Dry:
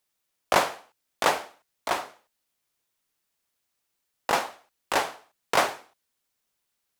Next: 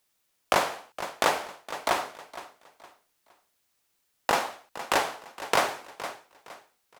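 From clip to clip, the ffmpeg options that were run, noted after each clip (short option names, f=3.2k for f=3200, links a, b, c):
-af "aecho=1:1:464|928|1392:0.112|0.0348|0.0108,acompressor=threshold=-27dB:ratio=2.5,volume=5dB"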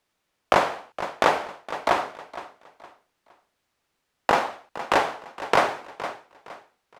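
-af "aemphasis=mode=reproduction:type=75kf,volume=5.5dB"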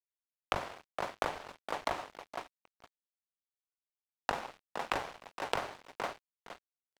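-filter_complex "[0:a]acrossover=split=110[a][b];[b]acompressor=threshold=-27dB:ratio=16[c];[a][c]amix=inputs=2:normalize=0,aeval=exprs='sgn(val(0))*max(abs(val(0))-0.00944,0)':c=same,volume=-1.5dB"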